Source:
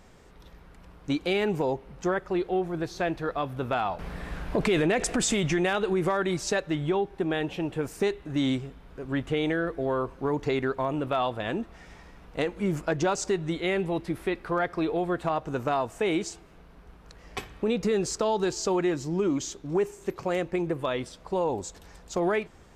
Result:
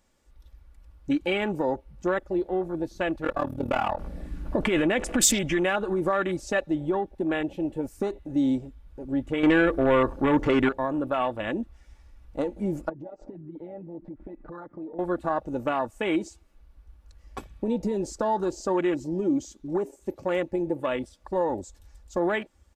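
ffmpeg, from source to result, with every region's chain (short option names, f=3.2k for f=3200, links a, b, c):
-filter_complex "[0:a]asettb=1/sr,asplit=3[a][b][c];[a]atrim=end=3.244[d];[b]atrim=start=3.24:end=3.99,asetpts=PTS-STARTPTS,afade=t=in:d=0.004:c=qsin,afade=t=out:st=0.746:d=0.004:c=qsin,acontrast=76,asoftclip=type=hard:threshold=-18.5dB,tremolo=f=38:d=0.919[e];[c]atrim=start=3.986[f];[d][e]acrossfade=d=0.004:c1=hsin:c2=qsin[g];[g][f]acrossfade=d=0.004:c1=qsin:c2=hsin,asettb=1/sr,asplit=3[h][i][j];[h]atrim=end=9.434[k];[i]atrim=start=9.43:end=10.69,asetpts=PTS-STARTPTS,afade=t=in:d=0.004:c=qsin,afade=t=out:st=1.256:d=0.004:c=qsin,acrossover=split=3000[l][m];[m]acompressor=threshold=-47dB:ratio=4:attack=1:release=60[n];[l][n]amix=inputs=2:normalize=0,aeval=exprs='0.15*sin(PI/2*1.78*val(0)/0.15)':c=same[o];[j]atrim=start=10.686[p];[k][o]acrossfade=d=0.004:c1=hsin:c2=qsin[q];[q][p]acrossfade=d=0.004:c1=qsin:c2=hsin,asettb=1/sr,asplit=3[r][s][t];[r]atrim=end=12.894[u];[s]atrim=start=12.89:end=14.99,asetpts=PTS-STARTPTS,afade=t=in:d=0.004:c=qsin,afade=t=out:st=2.096:d=0.004:c=qsin,lowpass=1.2k,aecho=1:1:6.6:0.58,atrim=end_sample=92610,acompressor=threshold=-36dB:ratio=10:attack=3.2:release=140:knee=1:detection=peak[v];[t]atrim=start=14.986[w];[u][v]acrossfade=d=0.004:c1=hsin:c2=qsin[x];[x][w]acrossfade=d=0.004:c1=qsin:c2=hsin,afwtdn=0.02,highshelf=f=4.9k:g=11,aecho=1:1:3.5:0.47"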